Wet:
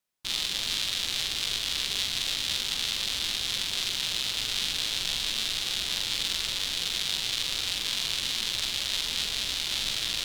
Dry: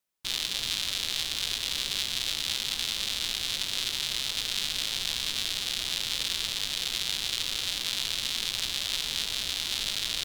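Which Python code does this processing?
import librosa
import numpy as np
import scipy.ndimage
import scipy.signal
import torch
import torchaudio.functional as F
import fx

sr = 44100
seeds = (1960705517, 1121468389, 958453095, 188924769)

y = fx.high_shelf(x, sr, hz=11000.0, db=-4.0)
y = fx.doubler(y, sr, ms=44.0, db=-4)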